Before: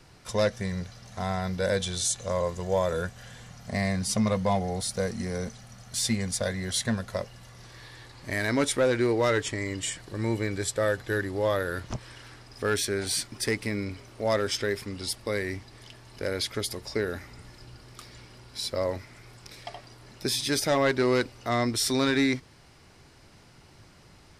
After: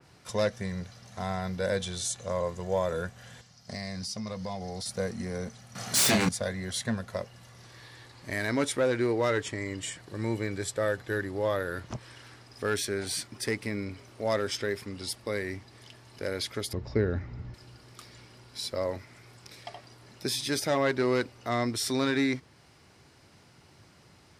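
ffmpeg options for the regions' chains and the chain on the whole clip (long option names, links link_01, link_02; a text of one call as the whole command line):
ffmpeg -i in.wav -filter_complex "[0:a]asettb=1/sr,asplit=3[link_01][link_02][link_03];[link_01]atrim=end=3.414[link_04];[link_02]atrim=start=3.41:end=4.86,asetpts=PTS-STARTPTS,afade=type=in:duration=0.004:curve=qsin,afade=type=out:start_time=1.446:duration=0.004:curve=qsin,agate=range=-10dB:threshold=-41dB:ratio=16:release=100:detection=peak,equalizer=frequency=5000:width=2:gain=13.5,acompressor=threshold=-31dB:ratio=4:attack=3.2:release=140:knee=1:detection=peak[link_05];[link_03]atrim=start=4.856[link_06];[link_04][link_05]acrossfade=duration=0.004:curve1=hsin:curve2=qsin[link_07];[link_07][link_06]acrossfade=duration=0.004:curve1=qsin:curve2=hsin,asettb=1/sr,asplit=3[link_08][link_09][link_10];[link_08]atrim=end=5.754[link_11];[link_09]atrim=start=5.75:end=6.29,asetpts=PTS-STARTPTS,afade=type=in:duration=0.004:curve=qsin,afade=type=out:start_time=0.536:duration=0.004:curve=qsin,highpass=150,aeval=exprs='0.141*sin(PI/2*3.55*val(0)/0.141)':channel_layout=same,asplit=2[link_12][link_13];[link_13]adelay=28,volume=-4dB[link_14];[link_12][link_14]amix=inputs=2:normalize=0,atrim=end_sample=23814[link_15];[link_10]atrim=start=6.286[link_16];[link_11][link_15]acrossfade=duration=0.004:curve1=hsin:curve2=qsin[link_17];[link_17][link_16]acrossfade=duration=0.004:curve1=qsin:curve2=hsin,asettb=1/sr,asplit=3[link_18][link_19][link_20];[link_18]atrim=end=16.734[link_21];[link_19]atrim=start=16.73:end=17.54,asetpts=PTS-STARTPTS,afade=type=in:duration=0.004:curve=qsin,afade=type=out:start_time=0.806:duration=0.004:curve=qsin,lowpass=frequency=7000:width=0.5412,lowpass=frequency=7000:width=1.3066,aemphasis=mode=reproduction:type=riaa[link_22];[link_20]atrim=start=17.536[link_23];[link_21][link_22]acrossfade=duration=0.004:curve1=hsin:curve2=qsin[link_24];[link_24][link_23]acrossfade=duration=0.004:curve1=qsin:curve2=hsin,highpass=73,adynamicequalizer=threshold=0.00562:dfrequency=2700:dqfactor=0.7:tfrequency=2700:tqfactor=0.7:attack=5:release=100:ratio=0.375:range=1.5:mode=cutabove:tftype=highshelf,volume=-2.5dB" out.wav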